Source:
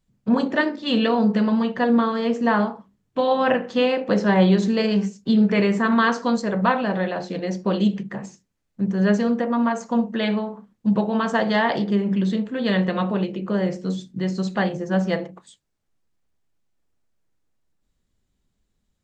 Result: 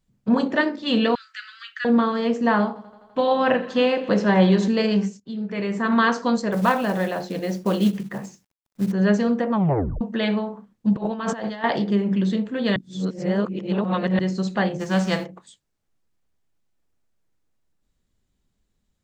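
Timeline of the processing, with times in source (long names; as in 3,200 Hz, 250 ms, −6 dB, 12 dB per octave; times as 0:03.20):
0:01.15–0:01.85: Butterworth high-pass 1,300 Hz 96 dB per octave
0:02.59–0:04.68: feedback echo with a high-pass in the loop 84 ms, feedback 80%, high-pass 160 Hz, level −19.5 dB
0:05.20–0:05.98: fade in quadratic, from −14.5 dB
0:06.52–0:08.92: log-companded quantiser 6 bits
0:09.52: tape stop 0.49 s
0:10.96–0:11.64: compressor whose output falls as the input rises −26 dBFS, ratio −0.5
0:12.76–0:14.19: reverse
0:14.79–0:15.24: spectral envelope flattened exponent 0.6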